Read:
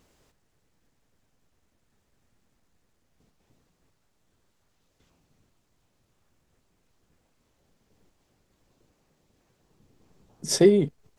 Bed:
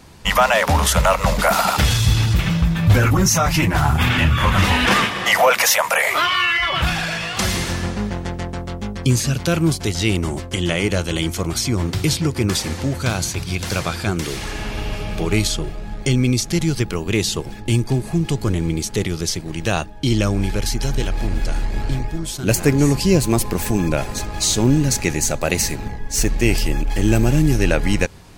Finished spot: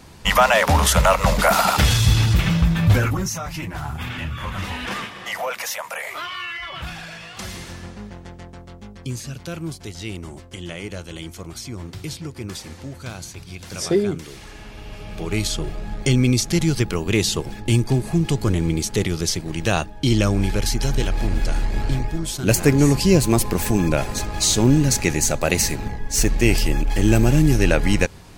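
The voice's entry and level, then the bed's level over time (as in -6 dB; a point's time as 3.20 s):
3.30 s, -2.0 dB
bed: 2.83 s 0 dB
3.40 s -12.5 dB
14.79 s -12.5 dB
15.74 s 0 dB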